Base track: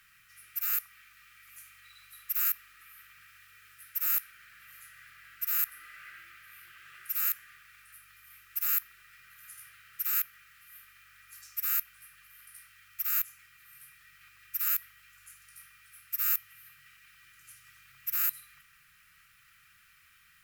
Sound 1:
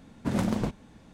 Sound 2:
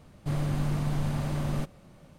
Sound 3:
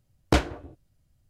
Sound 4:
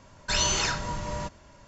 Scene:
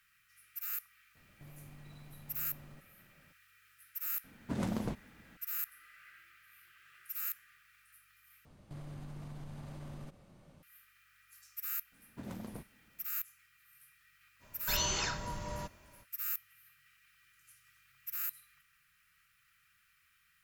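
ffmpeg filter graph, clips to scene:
-filter_complex "[2:a]asplit=2[a][b];[1:a]asplit=2[c][d];[0:a]volume=-9dB[e];[a]acompressor=threshold=-37dB:ratio=6:attack=3.2:release=140:knee=1:detection=peak[f];[b]acompressor=threshold=-36dB:ratio=6:attack=3.2:release=140:knee=1:detection=peak[g];[e]asplit=2[h][i];[h]atrim=end=8.454[j];[g]atrim=end=2.18,asetpts=PTS-STARTPTS,volume=-7dB[k];[i]atrim=start=10.626[l];[f]atrim=end=2.18,asetpts=PTS-STARTPTS,volume=-13.5dB,afade=t=in:d=0.004:c=hsin,afade=t=out:st=2.176:d=0.004:c=hsin,adelay=1150[m];[c]atrim=end=1.13,asetpts=PTS-STARTPTS,volume=-8dB,afade=t=in:d=0.004:c=hsin,afade=t=out:st=1.126:d=0.004:c=hsin,adelay=4240[n];[d]atrim=end=1.13,asetpts=PTS-STARTPTS,volume=-17.5dB,afade=t=in:d=0.004:c=hsin,afade=t=out:st=1.126:d=0.004:c=hsin,adelay=11920[o];[4:a]atrim=end=1.67,asetpts=PTS-STARTPTS,volume=-8dB,afade=t=in:d=0.05,afade=t=out:st=1.62:d=0.05,adelay=14390[p];[j][k]acrossfade=d=0.004:c1=hsin:c2=hsin[q];[q][l]acrossfade=d=0.004:c1=hsin:c2=hsin[r];[r][m][n][o][p]amix=inputs=5:normalize=0"

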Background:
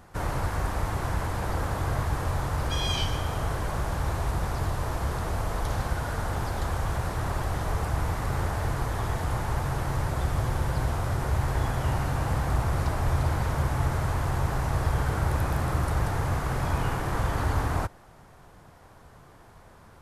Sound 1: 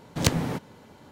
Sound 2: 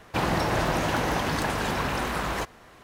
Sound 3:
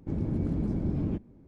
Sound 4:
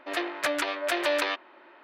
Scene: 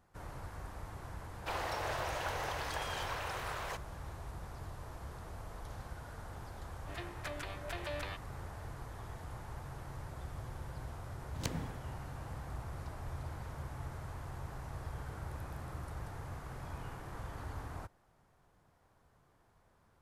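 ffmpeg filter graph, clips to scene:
-filter_complex "[0:a]volume=-17.5dB[a];[2:a]highpass=f=440:w=0.5412,highpass=f=440:w=1.3066[b];[1:a]tremolo=f=2.8:d=0.58[c];[b]atrim=end=2.83,asetpts=PTS-STARTPTS,volume=-11dB,afade=t=in:d=0.004:c=hsin,afade=t=out:st=2.826:d=0.004:c=hsin,adelay=1320[d];[4:a]atrim=end=1.83,asetpts=PTS-STARTPTS,volume=-16dB,afade=t=in:d=0.004:c=hsin,afade=t=out:st=1.826:d=0.004:c=hsin,adelay=6810[e];[c]atrim=end=1.11,asetpts=PTS-STARTPTS,volume=-13.5dB,afade=t=in:d=0.004:c=hsin,afade=t=out:st=1.106:d=0.004:c=hsin,adelay=11190[f];[a][d][e][f]amix=inputs=4:normalize=0"

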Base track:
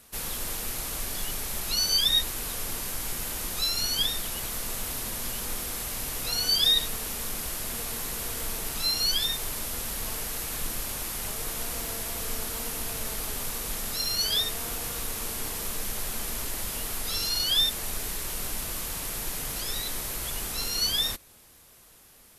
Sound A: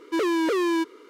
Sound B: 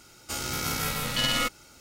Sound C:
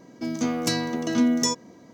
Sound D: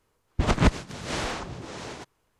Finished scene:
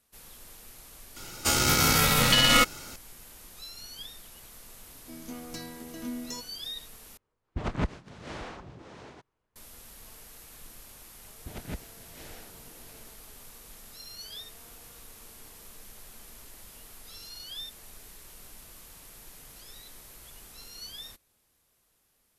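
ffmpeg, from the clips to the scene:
-filter_complex "[4:a]asplit=2[a][b];[0:a]volume=-16.5dB[c];[2:a]alimiter=level_in=16dB:limit=-1dB:release=50:level=0:latency=1[d];[a]highshelf=f=4.6k:g=-11.5[e];[b]equalizer=f=1.1k:w=5.1:g=-15[f];[c]asplit=2[g][h];[g]atrim=end=7.174[i];[e]atrim=end=2.39,asetpts=PTS-STARTPTS,volume=-9dB[j];[h]atrim=start=9.556[k];[d]atrim=end=1.8,asetpts=PTS-STARTPTS,volume=-7dB,afade=t=in:d=0.004:c=hsin,afade=t=out:st=1.796:d=0.004:c=hsin,adelay=1160[l];[3:a]atrim=end=1.93,asetpts=PTS-STARTPTS,volume=-16dB,afade=t=in:d=0.004:c=hsin,afade=t=out:st=1.926:d=0.004:c=hsin,adelay=4870[m];[f]atrim=end=2.39,asetpts=PTS-STARTPTS,volume=-18dB,afade=t=in:d=0.004:c=hsin,afade=t=out:st=2.386:d=0.004:c=hsin,adelay=11070[n];[i][j]acrossfade=d=0.004:c1=hsin:c2=hsin[o];[o][k]acrossfade=d=0.004:c1=hsin:c2=hsin[p];[p][l][m][n]amix=inputs=4:normalize=0"

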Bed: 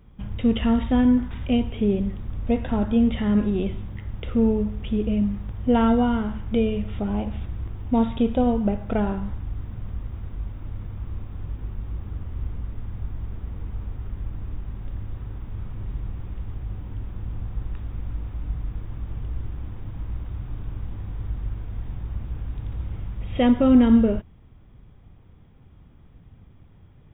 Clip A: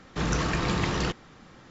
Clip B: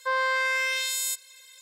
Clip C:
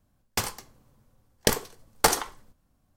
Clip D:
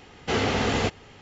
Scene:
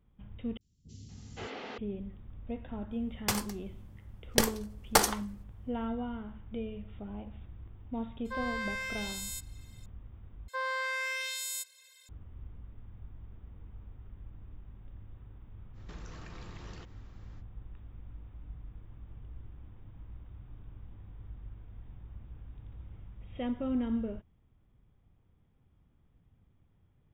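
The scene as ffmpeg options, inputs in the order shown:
-filter_complex "[2:a]asplit=2[a][b];[0:a]volume=-16.5dB[c];[4:a]acrossover=split=200|5400[d][e][f];[f]adelay=40[g];[e]adelay=520[h];[d][h][g]amix=inputs=3:normalize=0[i];[1:a]acompressor=threshold=-34dB:ratio=6:attack=3.2:release=140:knee=1:detection=peak[j];[c]asplit=3[k][l][m];[k]atrim=end=0.574[n];[i]atrim=end=1.21,asetpts=PTS-STARTPTS,volume=-16.5dB[o];[l]atrim=start=1.776:end=10.484[p];[b]atrim=end=1.61,asetpts=PTS-STARTPTS,volume=-8.5dB[q];[m]atrim=start=12.086[r];[3:a]atrim=end=2.96,asetpts=PTS-STARTPTS,volume=-3dB,afade=t=in:d=0.004:c=hsin,afade=t=out:st=2.956:d=0.004:c=hsin,adelay=2910[s];[a]atrim=end=1.61,asetpts=PTS-STARTPTS,volume=-11.5dB,afade=t=in:d=0.004:c=hsin,afade=t=out:st=1.606:d=0.004:c=hsin,adelay=8250[t];[j]atrim=end=1.7,asetpts=PTS-STARTPTS,volume=-12dB,afade=t=in:d=0.05,afade=t=out:st=1.65:d=0.05,adelay=15730[u];[n][o]acrossfade=d=0.004:c1=hsin:c2=hsin[v];[v][p]acrossfade=d=0.004:c1=hsin:c2=hsin[w];[w][q]acrossfade=d=0.004:c1=hsin:c2=hsin[x];[x][r]acrossfade=d=0.004:c1=hsin:c2=hsin[y];[y][s][t][u]amix=inputs=4:normalize=0"

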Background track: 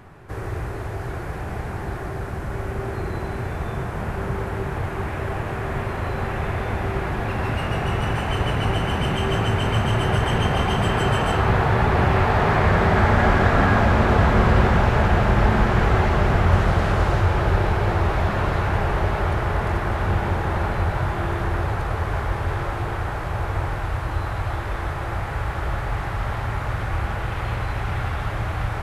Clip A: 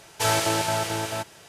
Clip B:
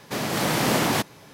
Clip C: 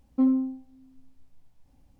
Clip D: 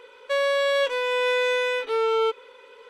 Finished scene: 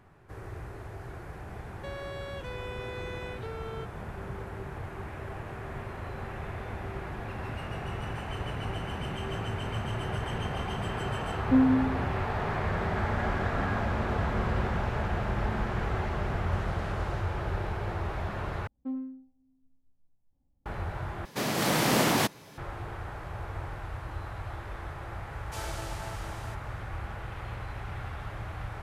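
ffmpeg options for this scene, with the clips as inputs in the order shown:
-filter_complex "[3:a]asplit=2[a][b];[0:a]volume=-12.5dB[c];[4:a]acompressor=threshold=-25dB:ratio=6:attack=3.2:release=140:knee=1:detection=peak[d];[a]aecho=1:1:177:0.531[e];[b]adynamicsmooth=sensitivity=3:basefreq=1k[f];[c]asplit=3[g][h][i];[g]atrim=end=18.674[j];[f]atrim=end=1.99,asetpts=PTS-STARTPTS,volume=-13dB[k];[h]atrim=start=20.656:end=21.254[l];[2:a]atrim=end=1.33,asetpts=PTS-STARTPTS,volume=-2.5dB[m];[i]atrim=start=22.576[n];[d]atrim=end=2.89,asetpts=PTS-STARTPTS,volume=-12.5dB,afade=t=in:d=0.004:c=hsin,afade=t=out:st=2.886:d=0.004:c=hsin,adelay=1540[o];[e]atrim=end=1.99,asetpts=PTS-STARTPTS,afade=t=in:d=0.004:c=hsin,afade=t=out:st=1.986:d=0.004:c=hsin,adelay=11330[p];[1:a]atrim=end=1.48,asetpts=PTS-STARTPTS,volume=-17.5dB,afade=t=in:d=0.004:c=hsin,afade=t=out:st=1.476:d=0.004:c=hsin,adelay=25320[q];[j][k]acrossfade=d=0.004:c1=hsin:c2=hsin[r];[r][l]acrossfade=d=0.004:c1=hsin:c2=hsin[s];[s][m]acrossfade=d=0.004:c1=hsin:c2=hsin[t];[t][n]acrossfade=d=0.004:c1=hsin:c2=hsin[u];[u][o][p][q]amix=inputs=4:normalize=0"

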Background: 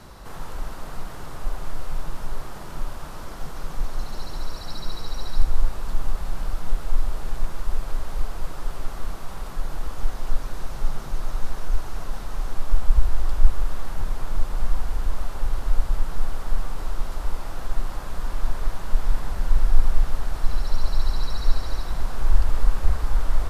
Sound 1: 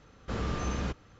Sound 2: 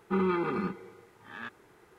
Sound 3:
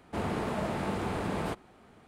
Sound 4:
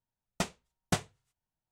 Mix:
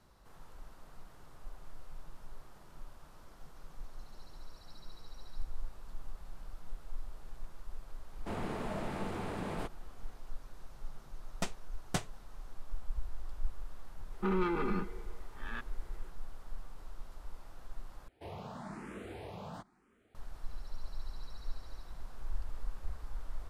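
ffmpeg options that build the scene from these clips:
-filter_complex "[3:a]asplit=2[a][b];[0:a]volume=-20dB[c];[2:a]asoftclip=type=tanh:threshold=-23.5dB[d];[b]asplit=2[e][f];[f]afreqshift=1[g];[e][g]amix=inputs=2:normalize=1[h];[c]asplit=2[i][j];[i]atrim=end=18.084[k];[h]atrim=end=2.07,asetpts=PTS-STARTPTS,volume=-10dB[l];[j]atrim=start=20.146[m];[a]atrim=end=2.07,asetpts=PTS-STARTPTS,volume=-6.5dB,afade=t=in:d=0.004:c=hsin,afade=t=out:st=2.066:d=0.004:c=hsin,adelay=8130[n];[4:a]atrim=end=1.71,asetpts=PTS-STARTPTS,volume=-5dB,afade=t=in:d=0.004:c=hsin,afade=t=out:st=1.706:d=0.004:c=hsin,adelay=11020[o];[d]atrim=end=1.98,asetpts=PTS-STARTPTS,volume=-2dB,afade=t=in:d=0.004:c=hsin,afade=t=out:st=1.976:d=0.004:c=hsin,adelay=622692S[p];[k][l]acrossfade=d=0.004:c1=hsin:c2=hsin[q];[q][m]acrossfade=d=0.004:c1=hsin:c2=hsin[r];[r][n][o][p]amix=inputs=4:normalize=0"

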